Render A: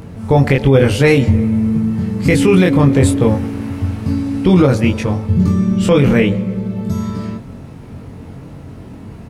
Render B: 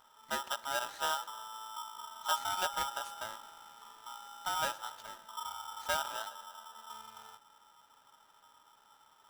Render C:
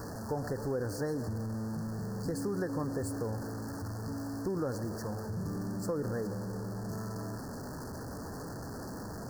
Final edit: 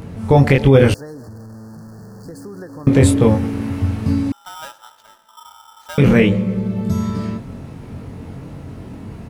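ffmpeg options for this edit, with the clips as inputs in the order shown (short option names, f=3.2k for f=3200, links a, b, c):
-filter_complex "[0:a]asplit=3[a][b][c];[a]atrim=end=0.942[d];[2:a]atrim=start=0.938:end=2.872[e];[b]atrim=start=2.868:end=4.322[f];[1:a]atrim=start=4.318:end=5.982[g];[c]atrim=start=5.978[h];[d][e]acrossfade=d=0.004:c1=hsin:c2=hsin[i];[i][f]acrossfade=d=0.004:c1=hsin:c2=hsin[j];[j][g]acrossfade=d=0.004:c1=hsin:c2=hsin[k];[k][h]acrossfade=d=0.004:c1=hsin:c2=hsin"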